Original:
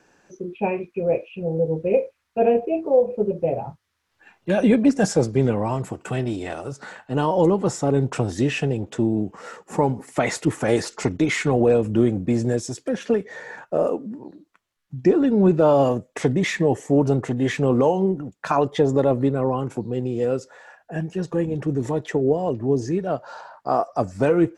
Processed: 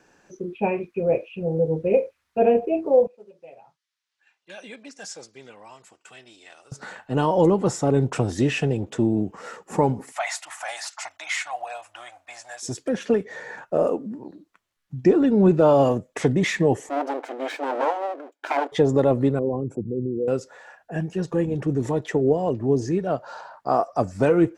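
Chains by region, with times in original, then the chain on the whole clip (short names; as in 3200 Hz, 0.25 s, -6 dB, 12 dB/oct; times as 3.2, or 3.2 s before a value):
3.07–6.72 LPF 5100 Hz + differentiator
10.12–12.63 elliptic high-pass 690 Hz + dynamic EQ 1300 Hz, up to -4 dB, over -38 dBFS, Q 0.92
16.89–18.72 minimum comb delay 1.3 ms + brick-wall FIR high-pass 260 Hz + high shelf 3800 Hz -10.5 dB
19.39–20.28 formant sharpening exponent 2 + bell 2000 Hz -13.5 dB 2.4 oct
whole clip: dry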